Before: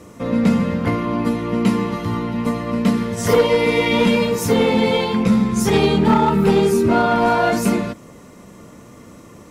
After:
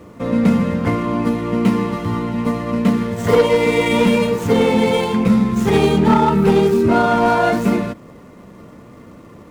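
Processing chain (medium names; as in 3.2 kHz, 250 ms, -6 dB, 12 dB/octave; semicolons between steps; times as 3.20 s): median filter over 9 samples; trim +1.5 dB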